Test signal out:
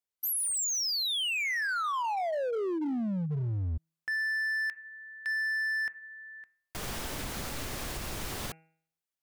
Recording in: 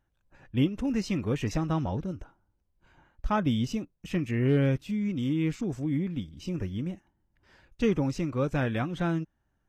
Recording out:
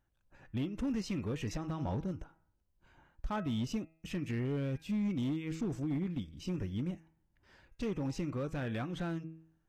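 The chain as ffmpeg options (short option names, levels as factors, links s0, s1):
-af "alimiter=limit=0.0708:level=0:latency=1:release=160,bandreject=f=161.2:t=h:w=4,bandreject=f=322.4:t=h:w=4,bandreject=f=483.6:t=h:w=4,bandreject=f=644.8:t=h:w=4,bandreject=f=806:t=h:w=4,bandreject=f=967.2:t=h:w=4,bandreject=f=1128.4:t=h:w=4,bandreject=f=1289.6:t=h:w=4,bandreject=f=1450.8:t=h:w=4,bandreject=f=1612:t=h:w=4,bandreject=f=1773.2:t=h:w=4,bandreject=f=1934.4:t=h:w=4,bandreject=f=2095.6:t=h:w=4,bandreject=f=2256.8:t=h:w=4,bandreject=f=2418:t=h:w=4,bandreject=f=2579.2:t=h:w=4,bandreject=f=2740.4:t=h:w=4,asoftclip=type=hard:threshold=0.0501,volume=0.708"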